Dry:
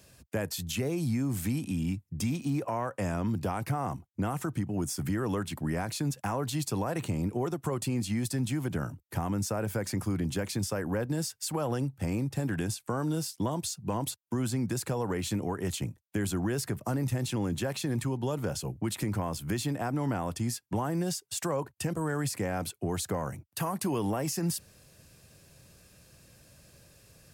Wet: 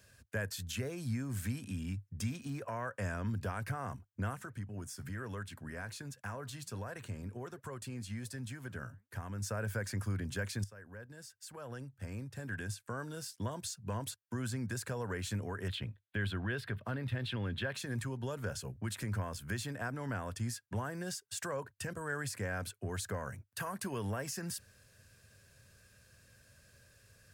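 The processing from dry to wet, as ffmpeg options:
ffmpeg -i in.wav -filter_complex "[0:a]asplit=3[link_01][link_02][link_03];[link_01]afade=type=out:start_time=4.34:duration=0.02[link_04];[link_02]flanger=delay=0.9:depth=6.9:regen=86:speed=1.3:shape=sinusoidal,afade=type=in:start_time=4.34:duration=0.02,afade=type=out:start_time=9.42:duration=0.02[link_05];[link_03]afade=type=in:start_time=9.42:duration=0.02[link_06];[link_04][link_05][link_06]amix=inputs=3:normalize=0,asettb=1/sr,asplit=3[link_07][link_08][link_09];[link_07]atrim=end=15.684[link_10];[link_08]atrim=start=15.68:end=17.75,asetpts=PTS-STARTPTS,afade=type=in:duration=0.004:curve=qsin,afade=type=out:start_time=2.066:duration=0.004:curve=qsin,highshelf=frequency=4800:width_type=q:width=3:gain=-11[link_11];[link_09]atrim=start=17.746[link_12];[link_10][link_11]acrossfade=duration=0.004:curve1=hsin:curve2=qsin[link_13];[link_13][link_12]acrossfade=duration=0.004:curve1=qsin:curve2=hsin,asplit=2[link_14][link_15];[link_14]atrim=end=10.64,asetpts=PTS-STARTPTS,afade=type=out:start_time=10.636:duration=0.004:curve=hsin:silence=0.133352[link_16];[link_15]atrim=start=10.64,asetpts=PTS-STARTPTS,afade=type=in:duration=3:silence=0.133352[link_17];[link_16][link_17]concat=n=2:v=0:a=1,equalizer=frequency=100:width_type=o:width=0.33:gain=6,equalizer=frequency=160:width_type=o:width=0.33:gain=-8,equalizer=frequency=315:width_type=o:width=0.33:gain=-10,equalizer=frequency=800:width_type=o:width=0.33:gain=-7,equalizer=frequency=1600:width_type=o:width=0.33:gain=10,equalizer=frequency=12500:width_type=o:width=0.33:gain=-4,volume=-6dB" out.wav

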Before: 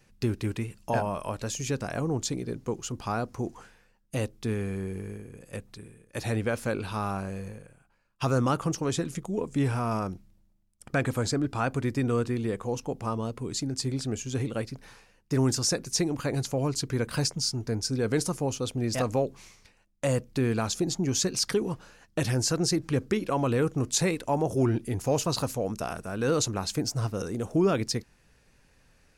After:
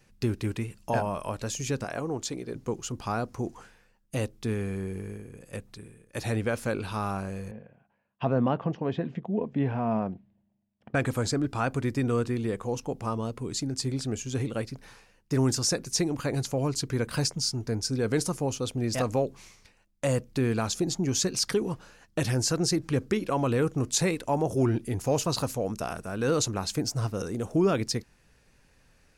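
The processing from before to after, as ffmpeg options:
ffmpeg -i in.wav -filter_complex "[0:a]asettb=1/sr,asplit=3[link_01][link_02][link_03];[link_01]atrim=end=1.844[link_04];[link_02]atrim=start=1.84:end=2.55,asetpts=PTS-STARTPTS,afade=type=in:duration=0.004:curve=qsin,afade=type=out:start_time=0.706:duration=0.004:curve=qsin,bass=frequency=250:gain=-8,treble=frequency=4000:gain=-3[link_05];[link_03]atrim=start=2.546[link_06];[link_04][link_05]acrossfade=duration=0.004:curve1=hsin:curve2=qsin[link_07];[link_07][link_06]acrossfade=duration=0.004:curve1=qsin:curve2=hsin,asettb=1/sr,asplit=3[link_08][link_09][link_10];[link_08]atrim=end=7.514[link_11];[link_09]atrim=start=7.51:end=10.95,asetpts=PTS-STARTPTS,afade=type=in:duration=0.004:curve=qsin,afade=type=out:start_time=3.436:duration=0.004:curve=qsin,highpass=120,equalizer=frequency=220:width_type=q:width=4:gain=6,equalizer=frequency=320:width_type=q:width=4:gain=-4,equalizer=frequency=680:width_type=q:width=4:gain=5,equalizer=frequency=1300:width_type=q:width=4:gain=-10,equalizer=frequency=2300:width_type=q:width=4:gain=-5,lowpass=frequency=2800:width=0.5412,lowpass=frequency=2800:width=1.3066[link_12];[link_10]atrim=start=10.946[link_13];[link_11][link_12]acrossfade=duration=0.004:curve1=hsin:curve2=qsin[link_14];[link_14][link_13]acrossfade=duration=0.004:curve1=qsin:curve2=hsin" out.wav

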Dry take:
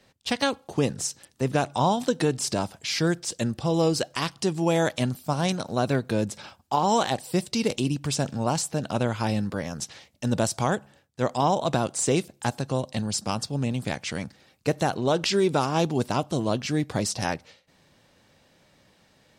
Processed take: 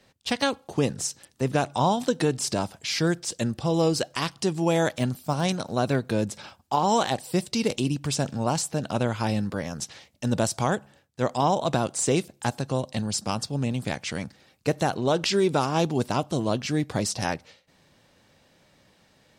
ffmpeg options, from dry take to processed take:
ffmpeg -i in.wav -filter_complex "[0:a]asettb=1/sr,asplit=3[link_01][link_02][link_03];[link_01]atrim=end=4.894[link_04];[link_02]atrim=start=4.89:end=5.42,asetpts=PTS-STARTPTS,afade=type=in:duration=0.004:curve=qsin,afade=type=out:start_time=0.526:duration=0.004:curve=qsin,deesser=0.75[link_05];[link_03]atrim=start=5.416[link_06];[link_04][link_05]acrossfade=duration=0.004:curve1=hsin:curve2=qsin[link_07];[link_07][link_06]acrossfade=duration=0.004:curve1=qsin:curve2=hsin" out.wav

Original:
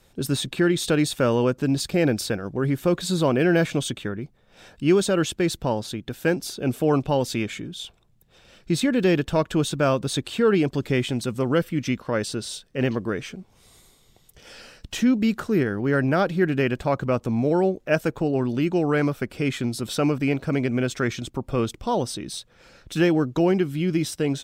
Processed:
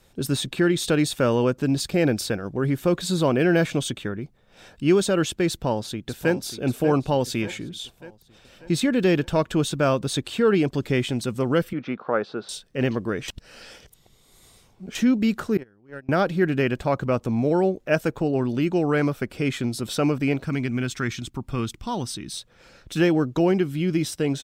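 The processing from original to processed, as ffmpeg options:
ffmpeg -i in.wav -filter_complex "[0:a]asplit=2[link_01][link_02];[link_02]afade=type=in:start_time=5.49:duration=0.01,afade=type=out:start_time=6.33:duration=0.01,aecho=0:1:590|1180|1770|2360|2950|3540:0.281838|0.155011|0.0852561|0.0468908|0.02579|0.0141845[link_03];[link_01][link_03]amix=inputs=2:normalize=0,asettb=1/sr,asplit=3[link_04][link_05][link_06];[link_04]atrim=end=11.734[link_07];[link_05]atrim=start=11.73:end=12.49,asetpts=PTS-STARTPTS,afade=type=in:duration=0.004:curve=qsin,afade=type=out:start_time=0.756:duration=0.004:curve=qsin,highpass=220,equalizer=frequency=280:width_type=q:width=4:gain=-4,equalizer=frequency=440:width_type=q:width=4:gain=3,equalizer=frequency=770:width_type=q:width=4:gain=7,equalizer=frequency=1300:width_type=q:width=4:gain=7,equalizer=frequency=2000:width_type=q:width=4:gain=-6,equalizer=frequency=2900:width_type=q:width=4:gain=-9,lowpass=frequency=3200:width=0.5412,lowpass=frequency=3200:width=1.3066[link_08];[link_06]atrim=start=12.486[link_09];[link_07][link_08]acrossfade=duration=0.004:curve1=hsin:curve2=qsin[link_10];[link_10][link_09]acrossfade=duration=0.004:curve1=qsin:curve2=hsin,asettb=1/sr,asplit=3[link_11][link_12][link_13];[link_11]atrim=end=15.574[link_14];[link_12]atrim=start=15.57:end=16.09,asetpts=PTS-STARTPTS,afade=type=in:duration=0.004:curve=qsin,afade=type=out:start_time=0.516:duration=0.004:curve=qsin,agate=range=-31dB:threshold=-18dB:ratio=16:release=100:detection=peak[link_15];[link_13]atrim=start=16.086[link_16];[link_14][link_15]acrossfade=duration=0.004:curve1=hsin:curve2=qsin[link_17];[link_17][link_16]acrossfade=duration=0.004:curve1=qsin:curve2=hsin,asettb=1/sr,asplit=3[link_18][link_19][link_20];[link_18]atrim=end=20.444[link_21];[link_19]atrim=start=20.44:end=22.36,asetpts=PTS-STARTPTS,afade=type=in:duration=0.004:curve=qsin,afade=type=out:start_time=1.916:duration=0.004:curve=qsin,equalizer=frequency=540:width_type=o:width=0.94:gain=-12[link_22];[link_20]atrim=start=22.356[link_23];[link_21][link_22]acrossfade=duration=0.004:curve1=hsin:curve2=qsin[link_24];[link_24][link_23]acrossfade=duration=0.004:curve1=qsin:curve2=hsin,asplit=3[link_25][link_26][link_27];[link_25]atrim=end=13.282[link_28];[link_26]atrim=start=13.278:end=14.952,asetpts=PTS-STARTPTS,areverse[link_29];[link_27]atrim=start=14.948[link_30];[link_28][link_29]acrossfade=duration=0.004:curve1=hsin:curve2=hsin[link_31];[link_31][link_30]acrossfade=duration=0.004:curve1=hsin:curve2=hsin" out.wav

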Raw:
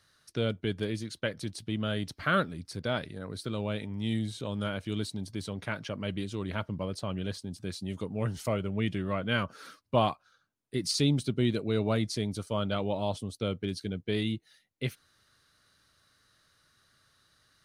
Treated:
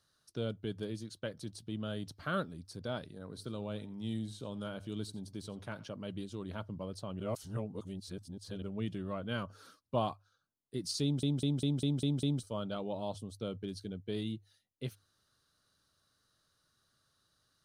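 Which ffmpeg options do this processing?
ffmpeg -i in.wav -filter_complex "[0:a]asettb=1/sr,asplit=3[link_01][link_02][link_03];[link_01]atrim=end=3.124[link_04];[link_02]atrim=start=3.12:end=5.93,asetpts=PTS-STARTPTS,afade=type=in:duration=0.004:curve=qsin,afade=type=out:start_time=2.806:duration=0.004:curve=qsin,aecho=1:1:86:0.112,atrim=end_sample=123921[link_05];[link_03]atrim=start=5.926[link_06];[link_04][link_05]acrossfade=duration=0.004:curve1=hsin:curve2=qsin[link_07];[link_07][link_06]acrossfade=duration=0.004:curve1=qsin:curve2=hsin,asplit=10[link_08][link_09][link_10][link_11][link_12][link_13][link_14][link_15][link_16][link_17];[link_08]atrim=end=7.202[link_18];[link_09]atrim=start=7.198:end=8.622,asetpts=PTS-STARTPTS,areverse[link_19];[link_10]atrim=start=8.618:end=11.232[link_20];[link_11]atrim=start=11.028:end=11.232[link_21];[link_12]atrim=start=11.028:end=11.232[link_22];[link_13]atrim=start=11.028:end=11.232[link_23];[link_14]atrim=start=11.028:end=11.232[link_24];[link_15]atrim=start=11.028:end=11.232[link_25];[link_16]atrim=start=11.028:end=11.232[link_26];[link_17]atrim=start=12.428[link_27];[link_18][link_19]acrossfade=duration=0.004:curve1=hsin:curve2=hsin[link_28];[link_28][link_20]acrossfade=duration=0.004:curve1=hsin:curve2=hsin[link_29];[link_29][link_21]acrossfade=duration=0.004:curve1=hsin:curve2=hsin[link_30];[link_30][link_22]acrossfade=duration=0.004:curve1=hsin:curve2=hsin[link_31];[link_31][link_23]acrossfade=duration=0.004:curve1=hsin:curve2=hsin[link_32];[link_32][link_24]acrossfade=duration=0.004:curve1=hsin:curve2=hsin[link_33];[link_33][link_25]acrossfade=duration=0.004:curve1=hsin:curve2=hsin[link_34];[link_34][link_26]acrossfade=duration=0.004:curve1=hsin:curve2=hsin[link_35];[link_35][link_27]acrossfade=duration=0.004:curve1=hsin:curve2=hsin,equalizer=frequency=2100:width=1.8:gain=-10,bandreject=frequency=50:width_type=h:width=6,bandreject=frequency=100:width_type=h:width=6,volume=-6.5dB" out.wav

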